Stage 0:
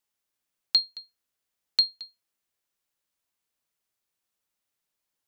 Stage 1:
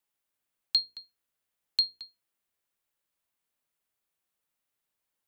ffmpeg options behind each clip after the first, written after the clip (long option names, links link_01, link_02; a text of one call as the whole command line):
ffmpeg -i in.wav -filter_complex "[0:a]equalizer=frequency=5500:width=1.2:gain=-5,bandreject=frequency=60:width_type=h:width=6,bandreject=frequency=120:width_type=h:width=6,bandreject=frequency=180:width_type=h:width=6,bandreject=frequency=240:width_type=h:width=6,bandreject=frequency=300:width_type=h:width=6,bandreject=frequency=360:width_type=h:width=6,bandreject=frequency=420:width_type=h:width=6,bandreject=frequency=480:width_type=h:width=6,acrossover=split=110|2300[link_01][link_02][link_03];[link_02]alimiter=level_in=9.5dB:limit=-24dB:level=0:latency=1:release=228,volume=-9.5dB[link_04];[link_01][link_04][link_03]amix=inputs=3:normalize=0" out.wav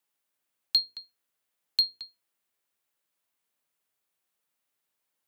ffmpeg -i in.wav -filter_complex "[0:a]highpass=frequency=150:poles=1,asplit=2[link_01][link_02];[link_02]volume=23.5dB,asoftclip=hard,volume=-23.5dB,volume=-9.5dB[link_03];[link_01][link_03]amix=inputs=2:normalize=0" out.wav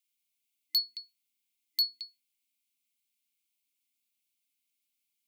ffmpeg -i in.wav -af "afftfilt=real='re*(1-between(b*sr/4096,160,1900))':imag='im*(1-between(b*sr/4096,160,1900))':win_size=4096:overlap=0.75,afreqshift=150,volume=22.5dB,asoftclip=hard,volume=-22.5dB" out.wav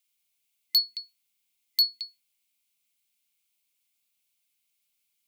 ffmpeg -i in.wav -af "equalizer=frequency=300:width_type=o:width=0.3:gain=-14,volume=5.5dB" out.wav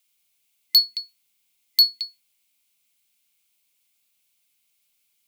ffmpeg -i in.wav -af "acrusher=bits=7:mode=log:mix=0:aa=0.000001,volume=6.5dB" out.wav